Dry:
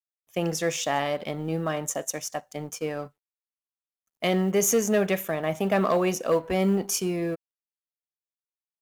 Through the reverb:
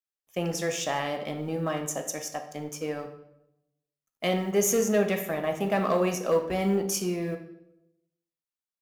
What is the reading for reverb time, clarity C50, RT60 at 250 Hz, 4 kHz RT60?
0.85 s, 9.0 dB, 0.95 s, 0.65 s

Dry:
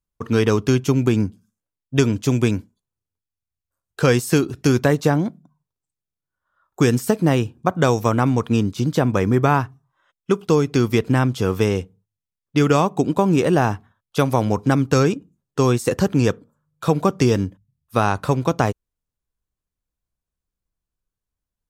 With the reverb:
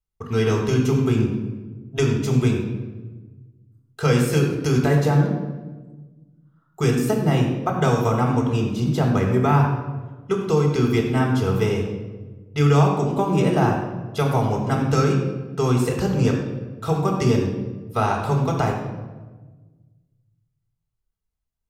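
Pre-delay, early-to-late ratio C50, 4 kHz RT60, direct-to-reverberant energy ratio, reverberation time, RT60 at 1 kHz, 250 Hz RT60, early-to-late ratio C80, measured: 5 ms, 4.0 dB, 0.85 s, 0.5 dB, 1.3 s, 1.2 s, 1.8 s, 6.0 dB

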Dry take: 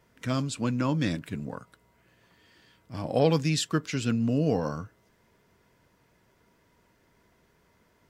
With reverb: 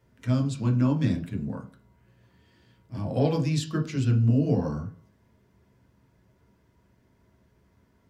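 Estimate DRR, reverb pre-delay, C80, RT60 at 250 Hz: 1.5 dB, 9 ms, 16.5 dB, 0.45 s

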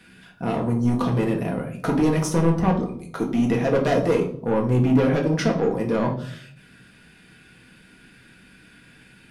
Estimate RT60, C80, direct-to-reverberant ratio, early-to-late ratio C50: 0.65 s, 13.5 dB, -0.5 dB, 9.5 dB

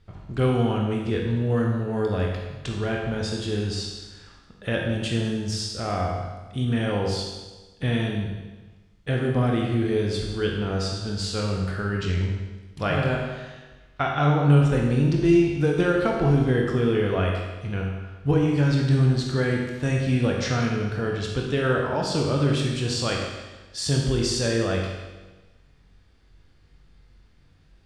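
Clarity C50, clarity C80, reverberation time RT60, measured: 2.0 dB, 4.0 dB, 1.2 s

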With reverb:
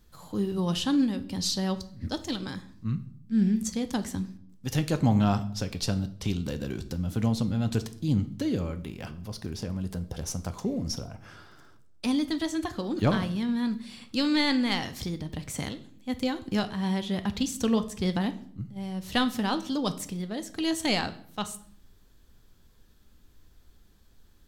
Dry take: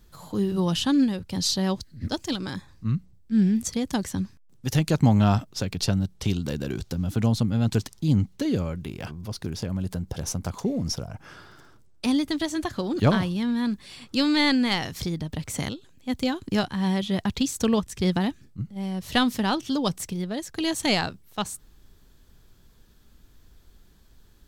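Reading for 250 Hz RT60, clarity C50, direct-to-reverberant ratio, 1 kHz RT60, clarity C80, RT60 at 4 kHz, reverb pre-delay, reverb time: 0.80 s, 15.0 dB, 9.5 dB, 0.55 s, 18.5 dB, 0.50 s, 4 ms, 0.60 s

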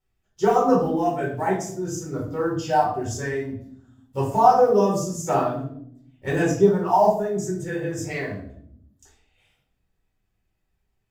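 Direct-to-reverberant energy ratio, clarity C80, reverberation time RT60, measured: -5.5 dB, 9.5 dB, 0.70 s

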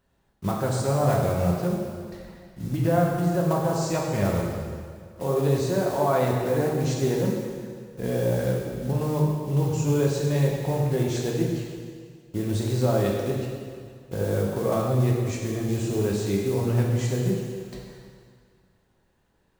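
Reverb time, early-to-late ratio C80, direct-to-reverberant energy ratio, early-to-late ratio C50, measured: 2.0 s, 2.5 dB, -2.5 dB, 1.0 dB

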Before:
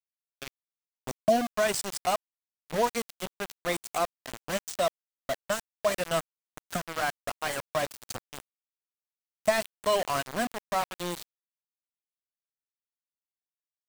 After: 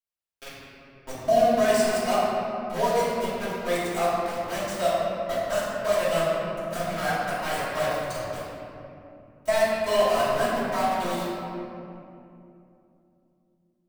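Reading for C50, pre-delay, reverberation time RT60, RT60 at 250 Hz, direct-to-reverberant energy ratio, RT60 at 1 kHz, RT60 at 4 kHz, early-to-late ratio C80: -3.5 dB, 3 ms, 2.8 s, 3.8 s, -11.5 dB, 2.5 s, 1.5 s, -1.5 dB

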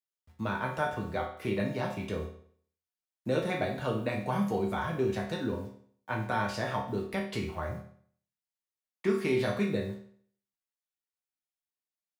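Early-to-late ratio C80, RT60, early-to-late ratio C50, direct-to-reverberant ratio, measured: 10.5 dB, 0.55 s, 6.5 dB, -2.0 dB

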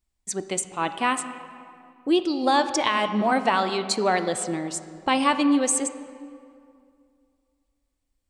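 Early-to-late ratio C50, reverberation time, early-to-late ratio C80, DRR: 10.5 dB, 2.3 s, 11.5 dB, 9.5 dB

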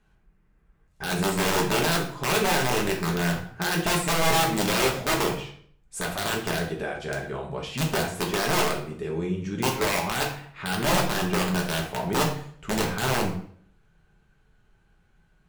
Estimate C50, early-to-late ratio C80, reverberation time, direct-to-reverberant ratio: 7.0 dB, 11.0 dB, 0.55 s, -1.5 dB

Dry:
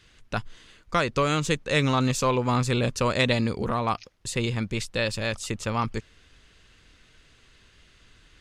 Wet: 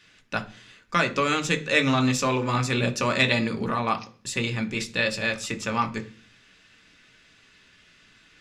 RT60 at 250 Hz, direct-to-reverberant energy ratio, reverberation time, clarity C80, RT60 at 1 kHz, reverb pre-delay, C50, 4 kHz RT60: 0.60 s, 4.5 dB, 0.45 s, 21.0 dB, 0.40 s, 3 ms, 16.0 dB, 0.50 s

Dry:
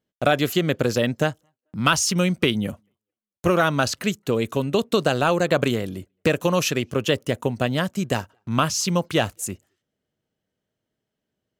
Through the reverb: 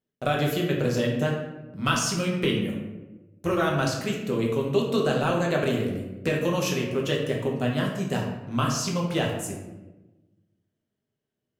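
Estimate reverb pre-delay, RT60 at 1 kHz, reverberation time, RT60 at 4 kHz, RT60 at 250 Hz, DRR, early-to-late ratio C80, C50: 5 ms, 1.0 s, 1.1 s, 0.65 s, 1.5 s, -2.0 dB, 6.5 dB, 3.5 dB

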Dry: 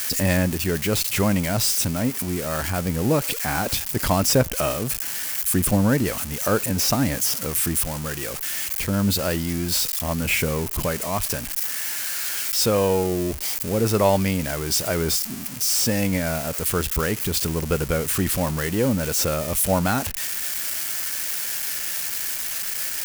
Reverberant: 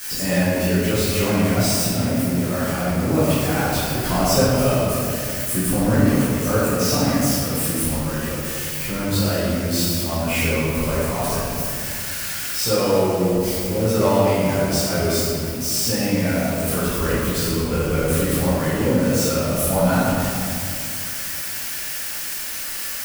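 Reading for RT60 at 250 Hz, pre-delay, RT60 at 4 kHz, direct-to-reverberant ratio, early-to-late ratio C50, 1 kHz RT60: 2.9 s, 11 ms, 1.3 s, -12.0 dB, -4.0 dB, 2.2 s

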